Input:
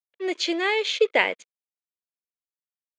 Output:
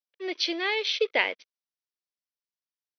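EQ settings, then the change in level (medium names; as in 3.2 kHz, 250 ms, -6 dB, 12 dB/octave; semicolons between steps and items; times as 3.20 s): brick-wall FIR band-pass 190–6100 Hz; treble shelf 3.6 kHz +11 dB; -6.0 dB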